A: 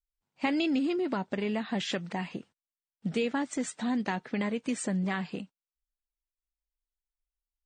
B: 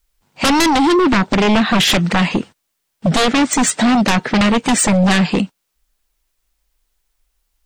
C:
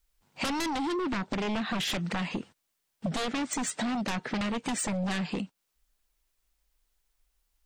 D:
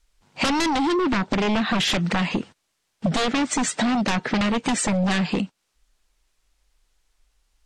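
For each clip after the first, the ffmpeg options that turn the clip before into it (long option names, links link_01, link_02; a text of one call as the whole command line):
ffmpeg -i in.wav -af "aeval=exprs='0.168*sin(PI/2*5.01*val(0)/0.168)':channel_layout=same,volume=6dB" out.wav
ffmpeg -i in.wav -af "acompressor=threshold=-23dB:ratio=6,volume=-7dB" out.wav
ffmpeg -i in.wav -af "lowpass=8400,volume=9dB" out.wav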